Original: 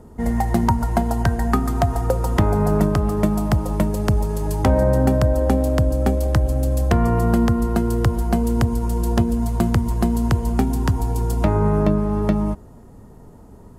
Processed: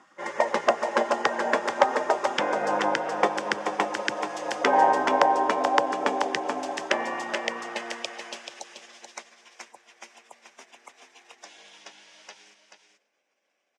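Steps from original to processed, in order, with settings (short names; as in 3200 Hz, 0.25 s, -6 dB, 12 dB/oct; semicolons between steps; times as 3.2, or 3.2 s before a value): high-pass sweep 640 Hz -> 3500 Hz, 6.45–9.53; in parallel at -10 dB: overloaded stage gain 10 dB; on the sum: spectral gate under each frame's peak -15 dB weak; speaker cabinet 290–5700 Hz, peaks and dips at 580 Hz +6 dB, 820 Hz +3 dB, 1300 Hz -5 dB, 4300 Hz -9 dB; echo 0.433 s -7 dB; on a send at -22 dB: reverb RT60 1.2 s, pre-delay 86 ms; on the sum: gain +4.5 dB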